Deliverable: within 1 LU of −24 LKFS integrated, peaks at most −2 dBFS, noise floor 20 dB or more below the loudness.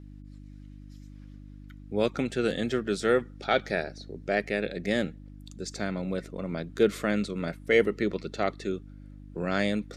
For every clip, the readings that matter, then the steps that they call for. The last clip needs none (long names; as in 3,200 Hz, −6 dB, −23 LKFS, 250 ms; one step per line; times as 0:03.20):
mains hum 50 Hz; hum harmonics up to 300 Hz; level of the hum −44 dBFS; integrated loudness −29.0 LKFS; sample peak −8.5 dBFS; target loudness −24.0 LKFS
→ hum removal 50 Hz, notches 6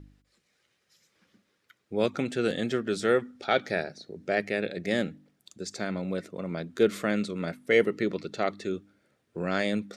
mains hum none found; integrated loudness −29.5 LKFS; sample peak −8.5 dBFS; target loudness −24.0 LKFS
→ level +5.5 dB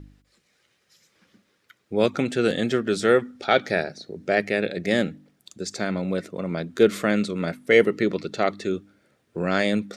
integrated loudness −24.0 LKFS; sample peak −3.0 dBFS; background noise floor −69 dBFS